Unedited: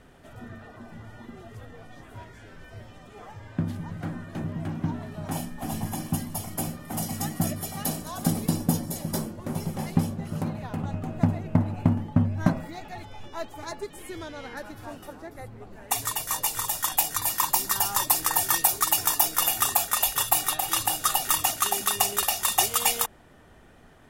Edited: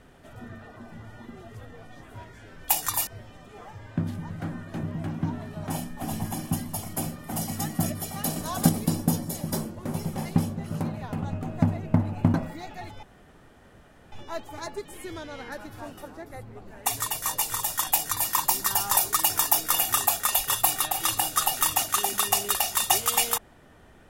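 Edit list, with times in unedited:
7.97–8.3 gain +4.5 dB
11.95–12.48 cut
13.17 insert room tone 1.09 s
16.96–17.35 copy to 2.68
18.02–18.65 cut

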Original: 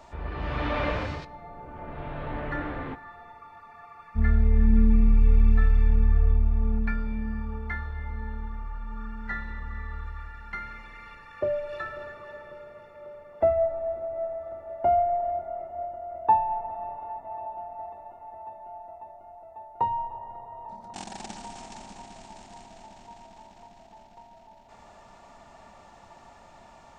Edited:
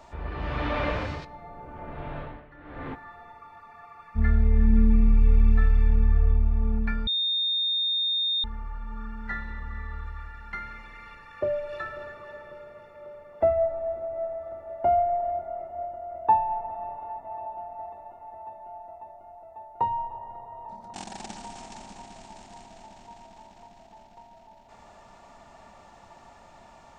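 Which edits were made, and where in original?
2.18–2.87 dip -20 dB, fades 0.34 s quadratic
7.07–8.44 bleep 3660 Hz -23 dBFS

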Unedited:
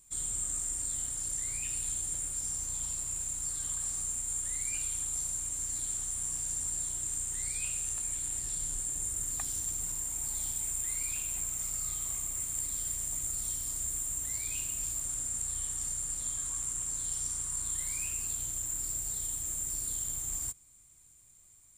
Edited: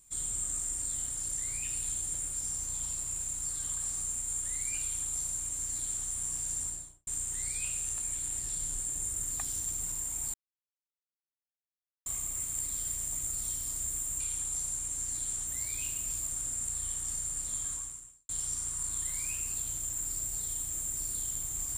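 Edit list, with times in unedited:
4.81–6.08 copy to 14.2
6.62–7.07 studio fade out
10.34–12.06 mute
16.45–17.02 fade out quadratic

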